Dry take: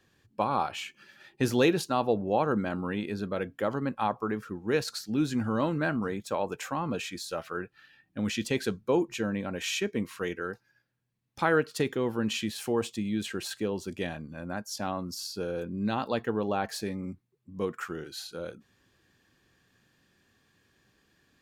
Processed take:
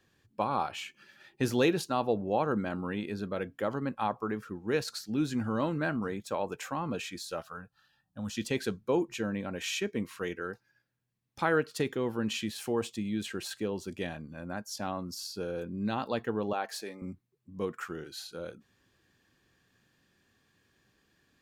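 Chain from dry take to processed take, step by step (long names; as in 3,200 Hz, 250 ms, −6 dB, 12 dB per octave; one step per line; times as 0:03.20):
0:07.42–0:08.37: phaser with its sweep stopped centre 890 Hz, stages 4
0:16.53–0:17.02: high-pass filter 400 Hz 12 dB per octave
level −2.5 dB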